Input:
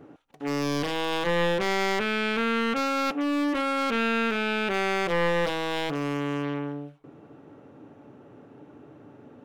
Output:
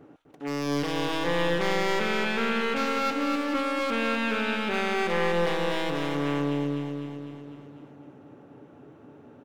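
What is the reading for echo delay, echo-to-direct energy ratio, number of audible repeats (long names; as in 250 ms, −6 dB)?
251 ms, −2.5 dB, 7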